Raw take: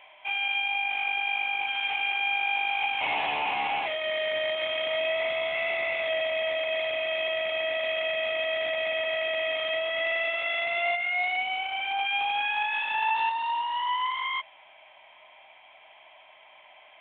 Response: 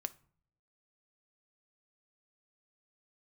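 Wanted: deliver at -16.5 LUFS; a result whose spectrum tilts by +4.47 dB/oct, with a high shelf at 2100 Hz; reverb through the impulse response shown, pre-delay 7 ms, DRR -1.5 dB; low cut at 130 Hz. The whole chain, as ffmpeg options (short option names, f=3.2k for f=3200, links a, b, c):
-filter_complex "[0:a]highpass=130,highshelf=f=2.1k:g=5.5,asplit=2[a][b];[1:a]atrim=start_sample=2205,adelay=7[c];[b][c]afir=irnorm=-1:irlink=0,volume=3dB[d];[a][d]amix=inputs=2:normalize=0,volume=4.5dB"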